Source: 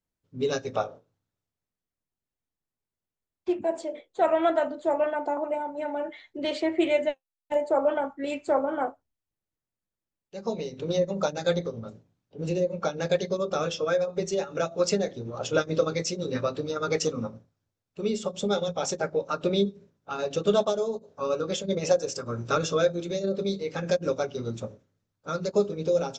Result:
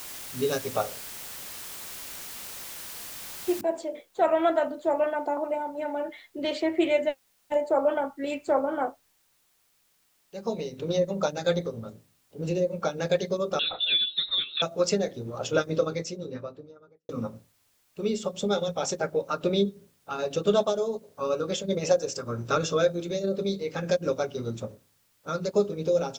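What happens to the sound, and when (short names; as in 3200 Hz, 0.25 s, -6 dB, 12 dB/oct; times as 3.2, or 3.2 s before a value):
3.61 noise floor step -40 dB -68 dB
13.59–14.62 inverted band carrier 4000 Hz
15.48–17.09 studio fade out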